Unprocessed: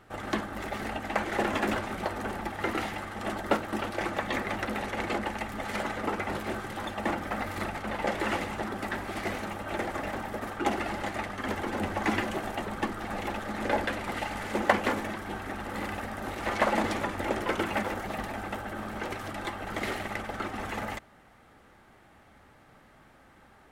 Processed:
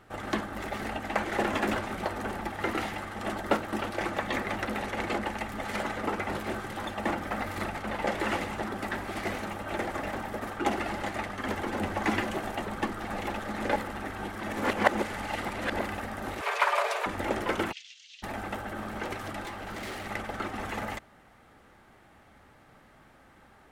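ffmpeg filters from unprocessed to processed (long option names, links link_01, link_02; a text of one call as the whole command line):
ffmpeg -i in.wav -filter_complex "[0:a]asettb=1/sr,asplit=3[link_01][link_02][link_03];[link_01]atrim=end=16.414[link_04];[link_02]atrim=start=16.41:end=17.06,asetpts=PTS-STARTPTS,afade=type=in:duration=0.004:curve=qsin,afade=type=out:start_time=0.646:duration=0.004:curve=qsin,afreqshift=360[link_05];[link_03]atrim=start=17.056[link_06];[link_04][link_05]acrossfade=duration=0.004:curve1=hsin:curve2=qsin[link_07];[link_07][link_06]acrossfade=duration=0.004:curve1=qsin:curve2=hsin,asplit=3[link_08][link_09][link_10];[link_08]afade=type=out:start_time=17.71:duration=0.02[link_11];[link_09]asuperpass=centerf=4400:order=8:qfactor=1.1,afade=type=in:start_time=17.71:duration=0.02,afade=type=out:start_time=18.22:duration=0.02[link_12];[link_10]afade=type=in:start_time=18.22:duration=0.02[link_13];[link_11][link_12][link_13]amix=inputs=3:normalize=0,asettb=1/sr,asplit=3[link_14][link_15][link_16];[link_14]atrim=end=19.424[link_17];[link_15]atrim=start=19.42:end=20.07,asetpts=PTS-STARTPTS,afade=type=in:duration=0.004:curve=qsin,afade=type=out:start_time=0.646:duration=0.004:curve=qsin,asoftclip=type=hard:threshold=-35.5dB[link_18];[link_16]atrim=start=20.066[link_19];[link_17][link_18]acrossfade=duration=0.004:curve1=hsin:curve2=qsin[link_20];[link_20][link_19]acrossfade=duration=0.004:curve1=qsin:curve2=hsin,asplit=3[link_21][link_22][link_23];[link_21]atrim=end=13.762[link_24];[link_22]atrim=start=13.758:end=15.812,asetpts=PTS-STARTPTS,areverse[link_25];[link_23]atrim=start=15.808[link_26];[link_24][link_25]acrossfade=duration=0.004:curve1=hsin:curve2=hsin[link_27];[link_27][link_26]acrossfade=duration=0.004:curve1=hsin:curve2=hsin" out.wav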